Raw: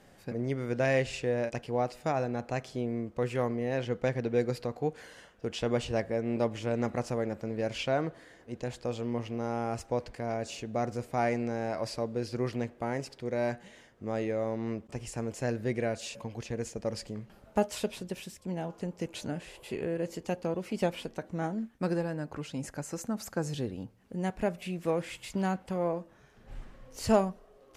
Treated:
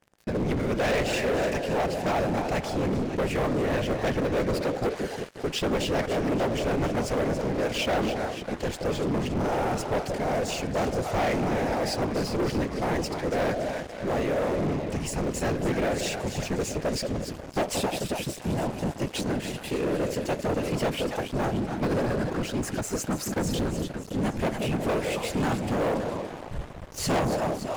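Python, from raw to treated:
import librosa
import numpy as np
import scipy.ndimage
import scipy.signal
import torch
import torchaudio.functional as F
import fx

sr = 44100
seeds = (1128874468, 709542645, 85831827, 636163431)

y = fx.echo_split(x, sr, split_hz=680.0, low_ms=177, high_ms=284, feedback_pct=52, wet_db=-9)
y = fx.whisperise(y, sr, seeds[0])
y = fx.leveller(y, sr, passes=5)
y = y * librosa.db_to_amplitude(-9.0)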